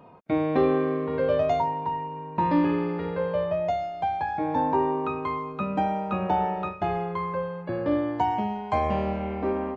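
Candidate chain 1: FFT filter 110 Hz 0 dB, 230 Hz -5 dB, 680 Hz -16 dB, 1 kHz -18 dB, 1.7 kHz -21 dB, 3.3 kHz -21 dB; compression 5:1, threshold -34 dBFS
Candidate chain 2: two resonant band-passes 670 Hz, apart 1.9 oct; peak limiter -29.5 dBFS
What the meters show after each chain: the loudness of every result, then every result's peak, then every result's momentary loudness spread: -39.5 LUFS, -40.0 LUFS; -25.5 dBFS, -29.5 dBFS; 5 LU, 11 LU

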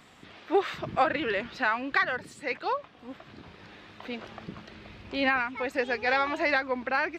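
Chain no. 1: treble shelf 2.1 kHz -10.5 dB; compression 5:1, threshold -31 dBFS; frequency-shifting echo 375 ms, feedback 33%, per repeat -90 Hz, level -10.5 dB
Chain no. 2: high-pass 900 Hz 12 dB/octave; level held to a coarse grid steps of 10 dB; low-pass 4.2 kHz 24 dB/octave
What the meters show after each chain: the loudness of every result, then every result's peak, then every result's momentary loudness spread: -36.5 LUFS, -35.0 LUFS; -20.0 dBFS, -18.5 dBFS; 14 LU, 15 LU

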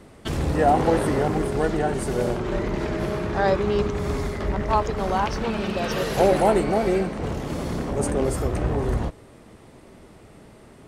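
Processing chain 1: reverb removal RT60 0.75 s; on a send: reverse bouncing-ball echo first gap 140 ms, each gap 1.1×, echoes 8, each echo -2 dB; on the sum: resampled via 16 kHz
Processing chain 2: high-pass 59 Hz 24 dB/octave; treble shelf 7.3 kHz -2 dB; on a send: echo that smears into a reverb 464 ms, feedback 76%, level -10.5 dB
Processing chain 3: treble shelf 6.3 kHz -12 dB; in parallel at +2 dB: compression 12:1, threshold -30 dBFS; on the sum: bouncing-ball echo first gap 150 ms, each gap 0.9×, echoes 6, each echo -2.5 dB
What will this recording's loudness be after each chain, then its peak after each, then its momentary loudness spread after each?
-21.5 LUFS, -23.5 LUFS, -18.0 LUFS; -5.5 dBFS, -6.0 dBFS, -3.0 dBFS; 13 LU, 14 LU, 10 LU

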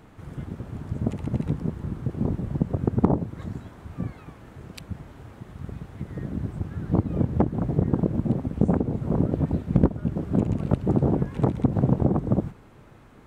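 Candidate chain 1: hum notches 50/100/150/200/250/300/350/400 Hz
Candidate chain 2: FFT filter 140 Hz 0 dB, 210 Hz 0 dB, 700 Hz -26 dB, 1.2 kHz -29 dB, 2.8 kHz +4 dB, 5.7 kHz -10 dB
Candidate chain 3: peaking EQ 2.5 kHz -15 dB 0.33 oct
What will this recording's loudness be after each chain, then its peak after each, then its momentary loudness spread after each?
-27.0 LUFS, -27.5 LUFS, -26.0 LUFS; -5.5 dBFS, -6.5 dBFS, -6.0 dBFS; 17 LU, 16 LU, 17 LU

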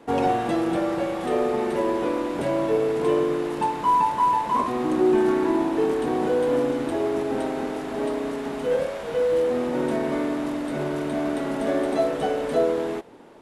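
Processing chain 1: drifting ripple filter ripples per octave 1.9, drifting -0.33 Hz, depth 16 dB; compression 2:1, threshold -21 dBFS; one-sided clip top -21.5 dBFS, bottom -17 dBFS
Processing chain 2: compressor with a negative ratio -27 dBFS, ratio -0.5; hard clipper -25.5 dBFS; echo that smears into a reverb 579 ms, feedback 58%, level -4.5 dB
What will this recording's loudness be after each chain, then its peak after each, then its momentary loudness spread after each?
-25.0 LUFS, -28.5 LUFS; -17.0 dBFS, -16.5 dBFS; 4 LU, 5 LU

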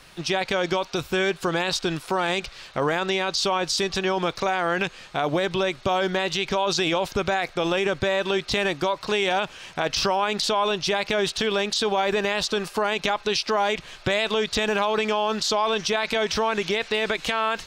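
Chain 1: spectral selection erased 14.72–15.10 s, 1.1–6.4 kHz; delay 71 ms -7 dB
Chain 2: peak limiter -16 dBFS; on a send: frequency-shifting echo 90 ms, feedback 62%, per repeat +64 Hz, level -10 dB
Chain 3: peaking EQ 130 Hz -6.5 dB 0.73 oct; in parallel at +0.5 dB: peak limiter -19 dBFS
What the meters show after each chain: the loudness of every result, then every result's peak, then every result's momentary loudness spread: -23.5 LUFS, -25.5 LUFS, -20.0 LUFS; -8.5 dBFS, -13.0 dBFS, -6.0 dBFS; 4 LU, 3 LU, 3 LU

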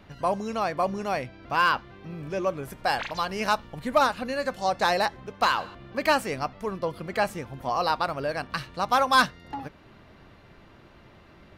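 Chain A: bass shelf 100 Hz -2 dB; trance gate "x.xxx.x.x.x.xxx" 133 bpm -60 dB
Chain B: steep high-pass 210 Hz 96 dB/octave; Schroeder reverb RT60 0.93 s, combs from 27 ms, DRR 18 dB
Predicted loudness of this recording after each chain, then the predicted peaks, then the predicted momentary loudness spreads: -28.5 LUFS, -27.0 LUFS; -11.0 dBFS, -7.0 dBFS; 13 LU, 10 LU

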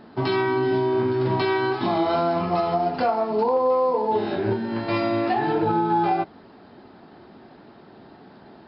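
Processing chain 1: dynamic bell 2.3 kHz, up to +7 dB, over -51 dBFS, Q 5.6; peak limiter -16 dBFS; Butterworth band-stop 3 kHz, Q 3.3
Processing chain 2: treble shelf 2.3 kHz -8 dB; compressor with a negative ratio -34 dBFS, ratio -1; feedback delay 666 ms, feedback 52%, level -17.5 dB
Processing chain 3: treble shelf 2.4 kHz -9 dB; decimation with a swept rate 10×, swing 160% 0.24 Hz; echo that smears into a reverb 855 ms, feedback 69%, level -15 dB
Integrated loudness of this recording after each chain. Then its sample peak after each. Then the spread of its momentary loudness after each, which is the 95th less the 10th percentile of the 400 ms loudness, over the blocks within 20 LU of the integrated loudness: -24.5 LUFS, -35.0 LUFS, -23.0 LUFS; -14.5 dBFS, -18.0 dBFS, -11.5 dBFS; 3 LU, 6 LU, 16 LU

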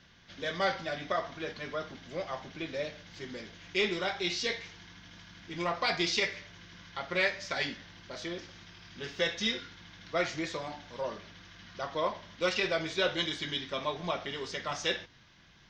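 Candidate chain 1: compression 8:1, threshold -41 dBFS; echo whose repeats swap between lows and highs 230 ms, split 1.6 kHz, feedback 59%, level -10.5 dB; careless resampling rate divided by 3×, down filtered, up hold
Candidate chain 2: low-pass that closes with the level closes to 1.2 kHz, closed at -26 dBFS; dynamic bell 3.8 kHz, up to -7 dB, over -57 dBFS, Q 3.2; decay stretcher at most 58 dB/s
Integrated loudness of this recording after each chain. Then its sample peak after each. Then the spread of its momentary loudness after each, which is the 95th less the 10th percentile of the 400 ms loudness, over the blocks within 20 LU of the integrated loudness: -45.0 LUFS, -35.0 LUFS; -26.5 dBFS, -18.0 dBFS; 7 LU, 14 LU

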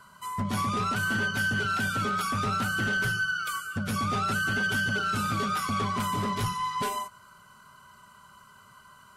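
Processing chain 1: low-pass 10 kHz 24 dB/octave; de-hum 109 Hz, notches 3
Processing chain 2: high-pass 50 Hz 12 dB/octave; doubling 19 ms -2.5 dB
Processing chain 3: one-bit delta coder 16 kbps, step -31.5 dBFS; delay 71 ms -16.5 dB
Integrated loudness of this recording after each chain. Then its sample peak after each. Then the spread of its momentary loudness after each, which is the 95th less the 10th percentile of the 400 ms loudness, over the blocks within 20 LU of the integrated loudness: -28.0 LUFS, -25.5 LUFS, -29.0 LUFS; -20.0 dBFS, -15.0 dBFS, -20.0 dBFS; 5 LU, 6 LU, 10 LU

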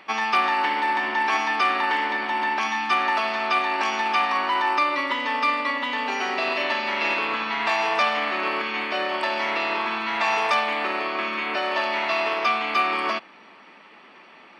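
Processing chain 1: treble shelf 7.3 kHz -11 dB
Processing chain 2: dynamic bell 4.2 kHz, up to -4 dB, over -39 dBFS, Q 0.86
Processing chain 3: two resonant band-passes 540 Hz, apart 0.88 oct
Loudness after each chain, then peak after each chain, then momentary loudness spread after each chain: -23.5 LUFS, -24.0 LUFS, -34.0 LUFS; -9.5 dBFS, -9.5 dBFS, -19.5 dBFS; 4 LU, 4 LU, 6 LU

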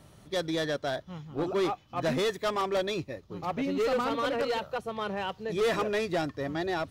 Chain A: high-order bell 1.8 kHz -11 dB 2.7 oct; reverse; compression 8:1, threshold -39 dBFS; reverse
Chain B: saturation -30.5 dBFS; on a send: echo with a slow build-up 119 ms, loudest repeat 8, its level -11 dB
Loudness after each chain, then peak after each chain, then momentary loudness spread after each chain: -43.0 LUFS, -32.5 LUFS; -30.0 dBFS, -20.0 dBFS; 3 LU, 5 LU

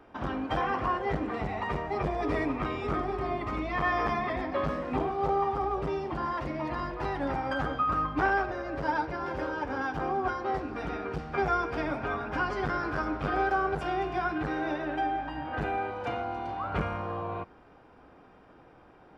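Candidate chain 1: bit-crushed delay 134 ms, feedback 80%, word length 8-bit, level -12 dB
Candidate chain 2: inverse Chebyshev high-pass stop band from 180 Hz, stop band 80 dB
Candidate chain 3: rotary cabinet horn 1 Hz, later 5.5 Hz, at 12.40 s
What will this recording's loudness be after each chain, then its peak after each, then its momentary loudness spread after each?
-30.5 LUFS, -36.5 LUFS, -34.0 LUFS; -15.5 dBFS, -19.0 dBFS, -18.0 dBFS; 6 LU, 10 LU, 6 LU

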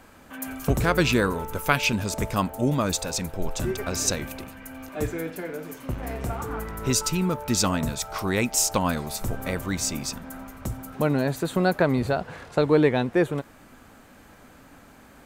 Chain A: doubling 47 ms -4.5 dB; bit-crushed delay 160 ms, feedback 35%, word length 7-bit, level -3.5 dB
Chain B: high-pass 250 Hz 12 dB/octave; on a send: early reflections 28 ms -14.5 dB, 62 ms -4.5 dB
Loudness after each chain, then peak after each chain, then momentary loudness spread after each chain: -23.0 LUFS, -25.5 LUFS; -4.0 dBFS, -3.5 dBFS; 13 LU, 15 LU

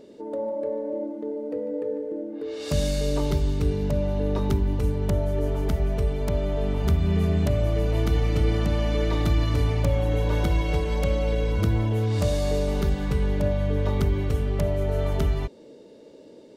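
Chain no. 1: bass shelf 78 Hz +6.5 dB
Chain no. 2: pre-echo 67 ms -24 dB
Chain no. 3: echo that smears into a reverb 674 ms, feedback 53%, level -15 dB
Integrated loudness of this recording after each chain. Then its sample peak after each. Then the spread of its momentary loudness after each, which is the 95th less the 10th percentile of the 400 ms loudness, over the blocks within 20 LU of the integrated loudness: -23.0 LUFS, -25.5 LUFS, -25.0 LUFS; -8.5 dBFS, -11.0 dBFS, -10.5 dBFS; 9 LU, 7 LU, 8 LU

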